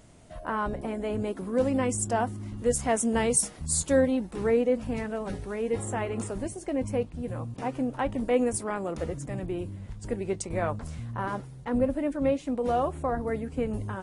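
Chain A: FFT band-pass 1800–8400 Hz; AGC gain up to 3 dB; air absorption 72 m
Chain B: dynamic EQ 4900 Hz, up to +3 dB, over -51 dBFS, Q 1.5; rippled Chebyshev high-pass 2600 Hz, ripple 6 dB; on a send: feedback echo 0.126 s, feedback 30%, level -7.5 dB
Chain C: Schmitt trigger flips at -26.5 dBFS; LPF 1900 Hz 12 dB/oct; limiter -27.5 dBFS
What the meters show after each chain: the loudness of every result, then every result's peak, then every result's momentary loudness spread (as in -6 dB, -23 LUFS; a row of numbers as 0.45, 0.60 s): -41.5, -32.5, -36.0 LUFS; -20.0, -11.5, -27.5 dBFS; 17, 24, 8 LU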